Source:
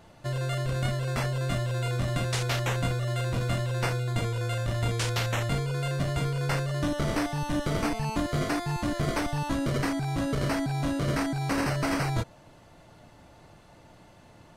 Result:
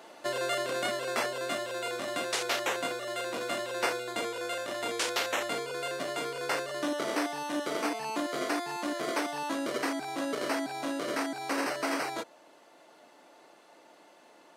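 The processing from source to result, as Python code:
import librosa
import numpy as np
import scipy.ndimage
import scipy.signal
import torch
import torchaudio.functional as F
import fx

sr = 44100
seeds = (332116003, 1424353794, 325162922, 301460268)

y = scipy.signal.sosfilt(scipy.signal.butter(4, 300.0, 'highpass', fs=sr, output='sos'), x)
y = fx.rider(y, sr, range_db=10, speed_s=2.0)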